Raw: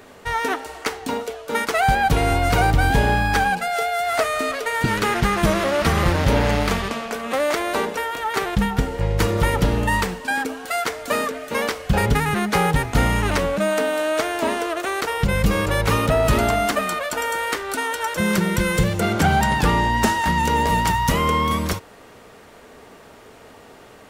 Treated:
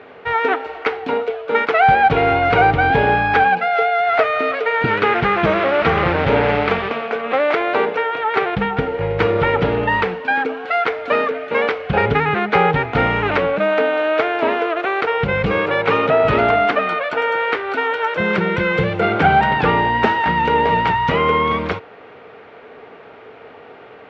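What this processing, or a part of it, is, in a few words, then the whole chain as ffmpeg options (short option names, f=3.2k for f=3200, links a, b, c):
guitar cabinet: -filter_complex "[0:a]asettb=1/sr,asplit=3[a][b][c];[a]atrim=end=15.584[d];[b]atrim=start=15.58:end=16.24,asetpts=PTS-STARTPTS,afade=t=in:d=0.004:c=qsin,afade=t=out:st=0.656:d=0.004:c=qsin,highpass=170[e];[c]atrim=start=16.236[f];[d][e]acrossfade=d=0.004:c1=hsin:c2=qsin[g];[g][f]acrossfade=d=0.004:c1=qsin:c2=hsin,highpass=110,equalizer=f=210:t=q:w=4:g=-4,equalizer=f=450:t=q:w=4:g=7,equalizer=f=760:t=q:w=4:g=5,equalizer=f=1.4k:t=q:w=4:g=5,equalizer=f=2.3k:t=q:w=4:g=5,lowpass=f=3.4k:w=0.5412,lowpass=f=3.4k:w=1.3066,volume=1.5dB"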